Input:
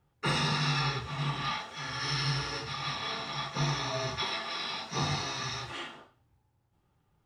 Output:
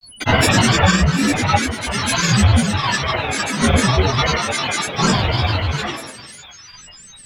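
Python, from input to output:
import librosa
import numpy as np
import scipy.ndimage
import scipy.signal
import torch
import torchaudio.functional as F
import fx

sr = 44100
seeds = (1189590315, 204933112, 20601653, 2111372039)

p1 = x + fx.echo_split(x, sr, split_hz=1300.0, low_ms=146, high_ms=448, feedback_pct=52, wet_db=-15, dry=0)
p2 = p1 + 10.0 ** (-49.0 / 20.0) * np.sin(2.0 * np.pi * 5600.0 * np.arange(len(p1)) / sr)
p3 = fx.room_shoebox(p2, sr, seeds[0], volume_m3=540.0, walls='furnished', distance_m=7.4)
p4 = fx.granulator(p3, sr, seeds[1], grain_ms=98.0, per_s=20.0, spray_ms=39.0, spread_st=12)
y = p4 * 10.0 ** (5.5 / 20.0)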